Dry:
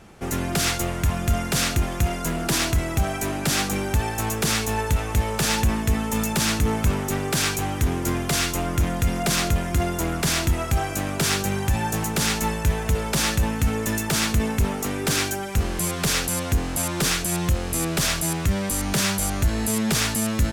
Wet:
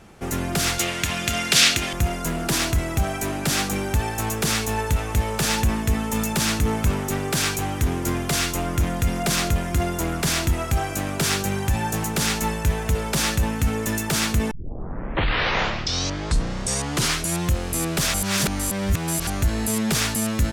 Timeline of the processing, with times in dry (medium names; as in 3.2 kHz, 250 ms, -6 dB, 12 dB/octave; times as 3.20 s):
0.78–1.93 s: frequency weighting D
14.51 s: tape start 2.90 s
18.14–19.27 s: reverse